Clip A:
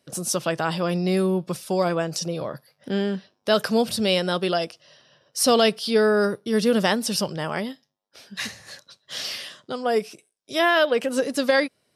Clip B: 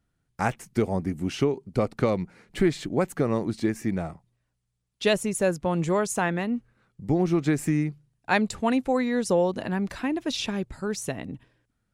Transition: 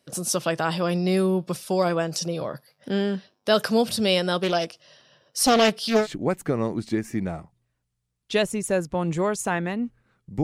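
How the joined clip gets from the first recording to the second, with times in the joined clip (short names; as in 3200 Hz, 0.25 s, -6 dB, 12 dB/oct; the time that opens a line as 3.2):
clip A
4.43–6.07 Doppler distortion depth 0.42 ms
6.03 switch to clip B from 2.74 s, crossfade 0.08 s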